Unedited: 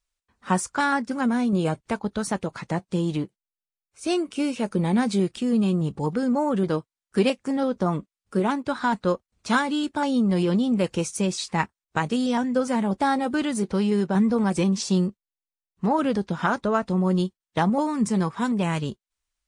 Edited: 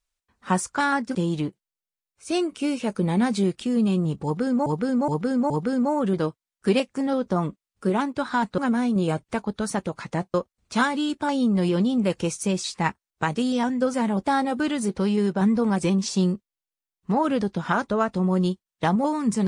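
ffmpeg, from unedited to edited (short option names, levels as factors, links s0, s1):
-filter_complex "[0:a]asplit=7[s0][s1][s2][s3][s4][s5][s6];[s0]atrim=end=1.152[s7];[s1]atrim=start=2.908:end=6.422[s8];[s2]atrim=start=5.998:end=6.422[s9];[s3]atrim=start=5.998:end=6.422[s10];[s4]atrim=start=5.998:end=9.082[s11];[s5]atrim=start=1.148:end=2.912[s12];[s6]atrim=start=9.078[s13];[s7][s8]acrossfade=d=0.004:c1=hsin:c2=hsin[s14];[s14][s9]acrossfade=d=0.004:c1=hsin:c2=hsin[s15];[s15][s10]acrossfade=d=0.004:c1=hsin:c2=hsin[s16];[s16][s11]acrossfade=d=0.004:c1=hsin:c2=hsin[s17];[s17][s12]acrossfade=d=0.004:c1=hsin:c2=hsin[s18];[s18][s13]acrossfade=d=0.004:c1=hsin:c2=hsin"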